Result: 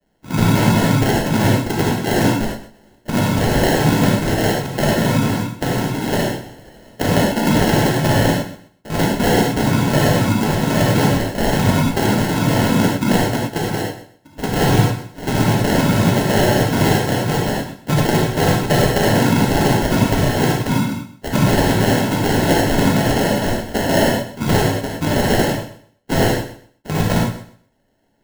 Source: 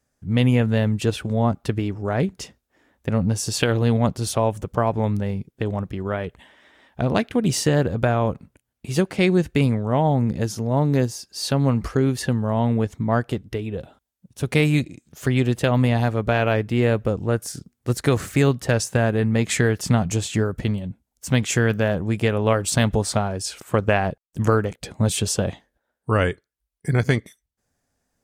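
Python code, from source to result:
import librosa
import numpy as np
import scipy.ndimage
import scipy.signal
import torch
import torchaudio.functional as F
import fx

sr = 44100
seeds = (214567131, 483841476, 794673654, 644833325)

p1 = fx.high_shelf(x, sr, hz=2100.0, db=9.0)
p2 = fx.over_compress(p1, sr, threshold_db=-22.0, ratio=-1.0)
p3 = p1 + (p2 * librosa.db_to_amplitude(-2.5))
p4 = fx.noise_vocoder(p3, sr, seeds[0], bands=8)
p5 = fx.sample_hold(p4, sr, seeds[1], rate_hz=1200.0, jitter_pct=0)
p6 = p5 + fx.echo_feedback(p5, sr, ms=127, feedback_pct=22, wet_db=-13.5, dry=0)
p7 = fx.rev_gated(p6, sr, seeds[2], gate_ms=130, shape='flat', drr_db=-2.5)
y = p7 * librosa.db_to_amplitude(-3.0)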